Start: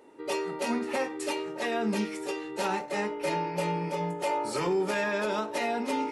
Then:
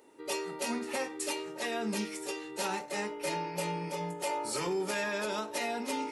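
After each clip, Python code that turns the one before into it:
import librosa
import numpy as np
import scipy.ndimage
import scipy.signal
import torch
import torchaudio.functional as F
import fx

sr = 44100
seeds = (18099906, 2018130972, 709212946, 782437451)

y = fx.high_shelf(x, sr, hz=4000.0, db=11.5)
y = y * 10.0 ** (-5.5 / 20.0)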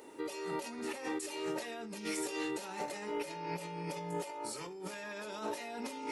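y = fx.over_compress(x, sr, threshold_db=-42.0, ratio=-1.0)
y = y * 10.0 ** (1.0 / 20.0)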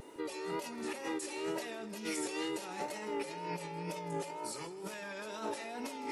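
y = fx.vibrato(x, sr, rate_hz=2.1, depth_cents=66.0)
y = fx.echo_feedback(y, sr, ms=159, feedback_pct=49, wet_db=-16.5)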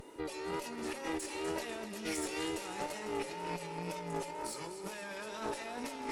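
y = fx.echo_thinned(x, sr, ms=249, feedback_pct=65, hz=420.0, wet_db=-10)
y = fx.tube_stage(y, sr, drive_db=29.0, bias=0.75)
y = y * 10.0 ** (4.0 / 20.0)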